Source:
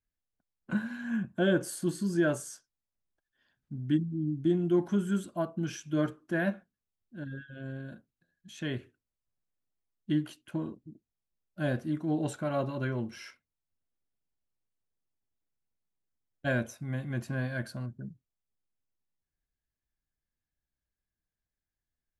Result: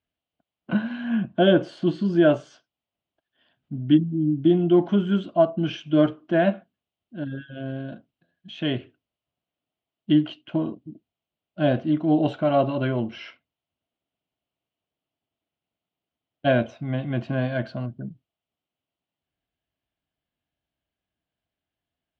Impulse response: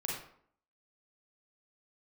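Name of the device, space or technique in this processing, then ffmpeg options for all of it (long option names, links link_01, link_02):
guitar cabinet: -af "highpass=88,equalizer=frequency=290:width_type=q:width=4:gain=4,equalizer=frequency=670:width_type=q:width=4:gain=9,equalizer=frequency=1700:width_type=q:width=4:gain=-5,equalizer=frequency=3000:width_type=q:width=4:gain=8,lowpass=frequency=3800:width=0.5412,lowpass=frequency=3800:width=1.3066,volume=7dB"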